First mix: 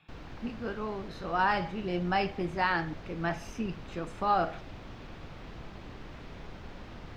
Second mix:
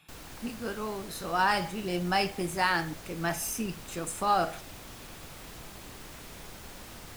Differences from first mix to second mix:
background: add low shelf 410 Hz -4 dB; master: remove air absorption 230 m

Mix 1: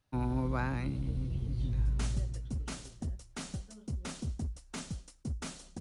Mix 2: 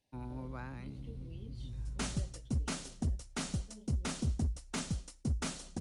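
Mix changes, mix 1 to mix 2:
speech: add Butterworth band-stop 1300 Hz, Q 1.4; first sound -11.0 dB; second sound +3.5 dB

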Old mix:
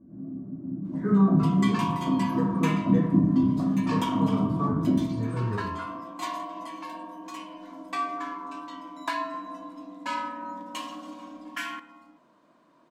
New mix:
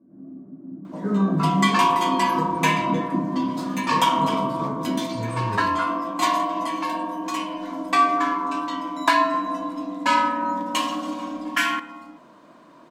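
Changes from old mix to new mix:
first sound: add HPF 250 Hz 12 dB/oct; second sound +12.0 dB

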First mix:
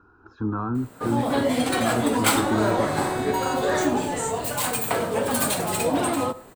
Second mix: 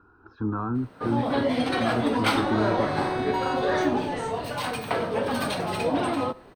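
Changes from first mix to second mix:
speech: send -8.5 dB; first sound: send -8.0 dB; master: add polynomial smoothing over 15 samples

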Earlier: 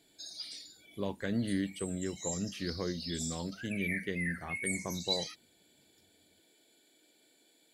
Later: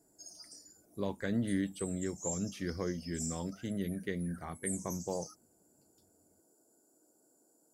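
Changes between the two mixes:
speech: add bell 2900 Hz -7 dB 0.39 oct; background: add inverse Chebyshev band-stop 1900–4000 Hz, stop band 40 dB

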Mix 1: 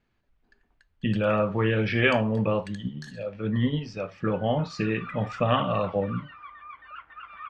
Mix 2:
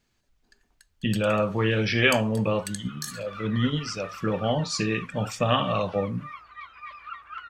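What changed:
second sound: entry -1.70 s; master: remove LPF 2500 Hz 12 dB/oct

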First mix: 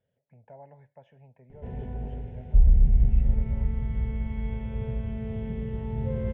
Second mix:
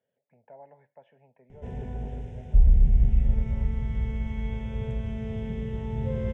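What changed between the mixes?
speech: add BPF 250–3500 Hz; background: remove air absorption 280 m

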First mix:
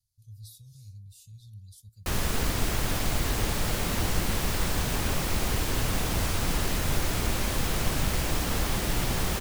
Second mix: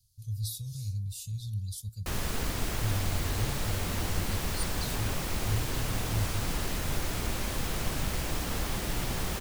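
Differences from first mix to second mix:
speech +12.0 dB; background -4.5 dB

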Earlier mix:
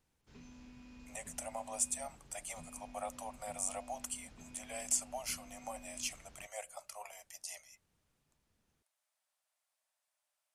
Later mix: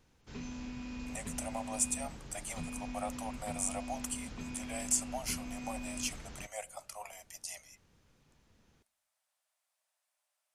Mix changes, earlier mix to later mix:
background +10.5 dB; reverb: on, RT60 0.75 s

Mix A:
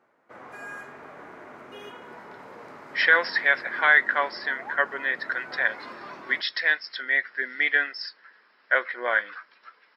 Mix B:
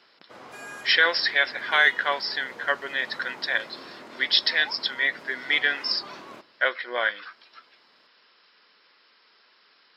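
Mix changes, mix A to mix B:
speech: entry -2.10 s; master: add resonant high shelf 2500 Hz +8 dB, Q 1.5

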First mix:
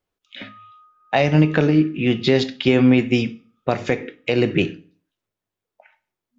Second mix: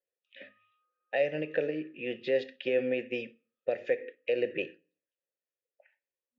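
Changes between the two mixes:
speech: send -8.5 dB; master: add vowel filter e

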